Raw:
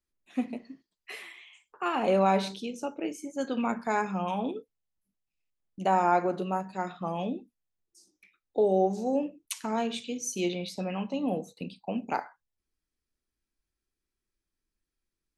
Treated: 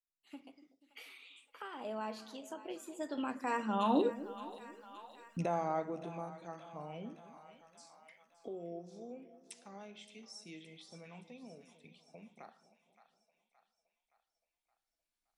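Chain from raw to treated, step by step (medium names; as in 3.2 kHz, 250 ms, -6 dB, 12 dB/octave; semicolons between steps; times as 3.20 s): recorder AGC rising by 7.1 dB/s; Doppler pass-by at 4.24 s, 38 m/s, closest 4.7 m; on a send: two-band feedback delay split 640 Hz, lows 242 ms, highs 570 ms, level -15 dB; on the sum: tape noise reduction on one side only encoder only; trim +9 dB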